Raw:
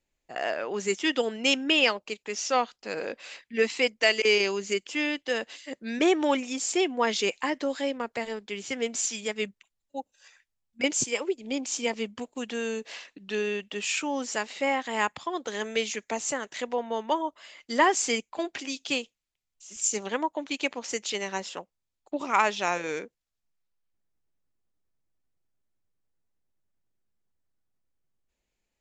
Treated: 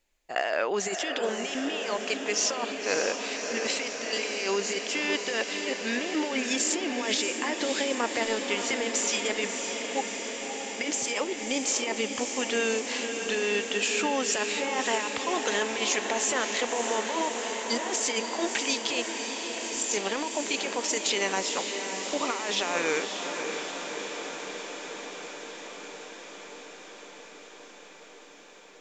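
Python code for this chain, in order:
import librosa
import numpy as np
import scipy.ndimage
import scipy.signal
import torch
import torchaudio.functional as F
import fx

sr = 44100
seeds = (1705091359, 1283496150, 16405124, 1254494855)

p1 = fx.peak_eq(x, sr, hz=130.0, db=-10.0, octaves=2.5)
p2 = fx.over_compress(p1, sr, threshold_db=-33.0, ratio=-1.0)
p3 = p2 + fx.echo_diffused(p2, sr, ms=589, feedback_pct=78, wet_db=-6.5, dry=0)
y = p3 * 10.0 ** (3.5 / 20.0)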